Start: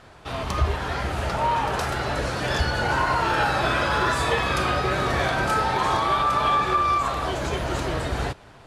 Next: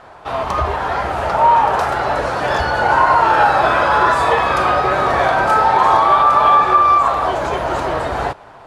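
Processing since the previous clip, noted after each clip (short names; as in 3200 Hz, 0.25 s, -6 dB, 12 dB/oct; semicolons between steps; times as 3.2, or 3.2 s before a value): bell 850 Hz +14 dB 2.2 oct; gain -1.5 dB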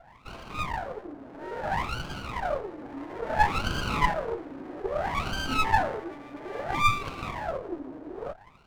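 wah 0.6 Hz 270–1600 Hz, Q 13; running maximum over 17 samples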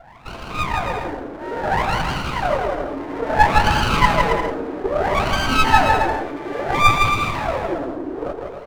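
bouncing-ball echo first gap 0.16 s, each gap 0.7×, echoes 5; gain +8.5 dB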